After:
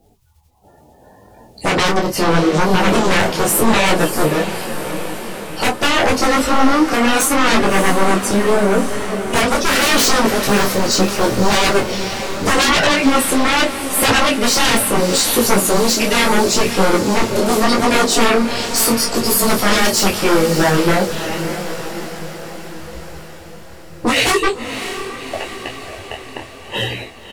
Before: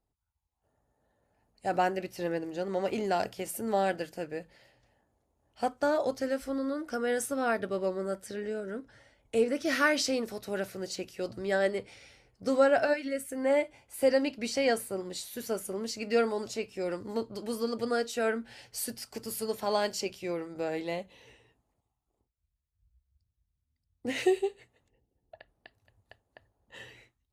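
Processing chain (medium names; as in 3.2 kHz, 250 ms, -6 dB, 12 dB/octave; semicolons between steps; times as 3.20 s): coarse spectral quantiser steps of 30 dB; peaking EQ 1.7 kHz -5.5 dB 0.77 oct; in parallel at -1 dB: compression, threshold -43 dBFS, peak gain reduction 21.5 dB; on the sum: doubling 26 ms -11 dB; sine folder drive 19 dB, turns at -11.5 dBFS; flange 0.71 Hz, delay 8.7 ms, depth 5.7 ms, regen -42%; echo that smears into a reverb 612 ms, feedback 60%, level -9.5 dB; detune thickener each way 27 cents; trim +8 dB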